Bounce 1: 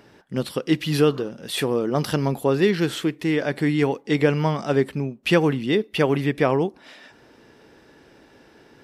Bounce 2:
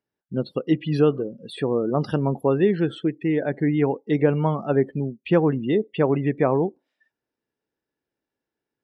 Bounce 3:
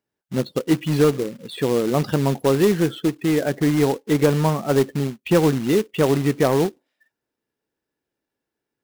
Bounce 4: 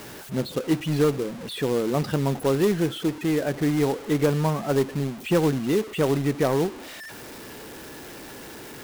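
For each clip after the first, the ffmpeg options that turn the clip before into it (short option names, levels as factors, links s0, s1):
-filter_complex "[0:a]afftdn=nr=35:nf=-30,acrossover=split=1400[s0][s1];[s1]acompressor=threshold=0.0112:ratio=6[s2];[s0][s2]amix=inputs=2:normalize=0"
-af "acontrast=60,acrusher=bits=3:mode=log:mix=0:aa=0.000001,volume=0.668"
-af "aeval=exprs='val(0)+0.5*0.0376*sgn(val(0))':c=same,volume=0.562"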